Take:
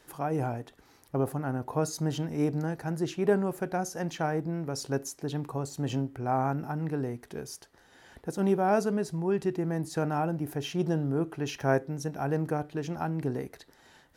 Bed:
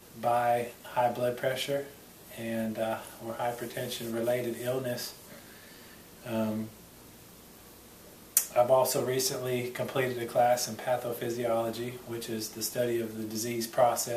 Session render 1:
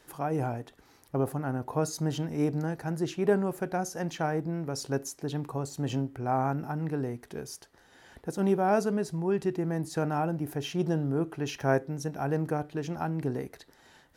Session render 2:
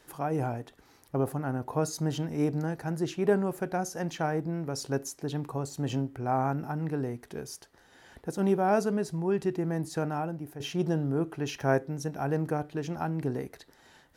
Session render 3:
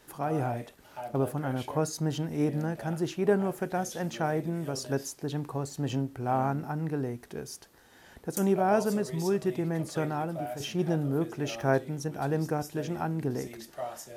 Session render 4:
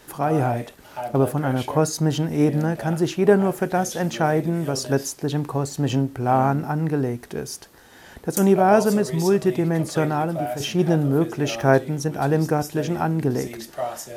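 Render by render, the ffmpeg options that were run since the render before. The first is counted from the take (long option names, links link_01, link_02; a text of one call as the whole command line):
ffmpeg -i in.wav -af anull out.wav
ffmpeg -i in.wav -filter_complex "[0:a]asplit=2[link_01][link_02];[link_01]atrim=end=10.6,asetpts=PTS-STARTPTS,afade=type=out:start_time=9.86:duration=0.74:silence=0.334965[link_03];[link_02]atrim=start=10.6,asetpts=PTS-STARTPTS,afade=type=in:duration=0.004:curve=hsin:silence=0.334965[link_04];[link_03][link_04]concat=n=2:v=0:a=1" out.wav
ffmpeg -i in.wav -i bed.wav -filter_complex "[1:a]volume=-12.5dB[link_01];[0:a][link_01]amix=inputs=2:normalize=0" out.wav
ffmpeg -i in.wav -af "volume=9dB" out.wav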